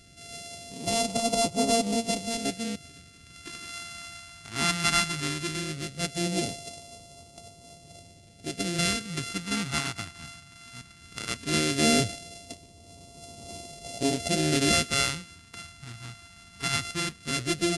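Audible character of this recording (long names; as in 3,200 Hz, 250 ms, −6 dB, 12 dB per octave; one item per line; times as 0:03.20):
a buzz of ramps at a fixed pitch in blocks of 64 samples
phaser sweep stages 2, 0.17 Hz, lowest notch 520–1,500 Hz
AAC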